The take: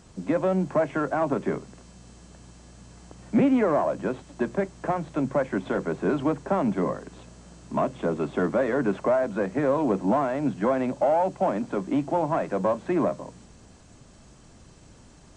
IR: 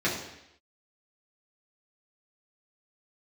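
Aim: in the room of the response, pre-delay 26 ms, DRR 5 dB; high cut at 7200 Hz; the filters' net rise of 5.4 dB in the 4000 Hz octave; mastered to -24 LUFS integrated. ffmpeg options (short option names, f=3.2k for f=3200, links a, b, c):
-filter_complex "[0:a]lowpass=7.2k,equalizer=f=4k:t=o:g=7.5,asplit=2[a][b];[1:a]atrim=start_sample=2205,adelay=26[c];[b][c]afir=irnorm=-1:irlink=0,volume=-17dB[d];[a][d]amix=inputs=2:normalize=0"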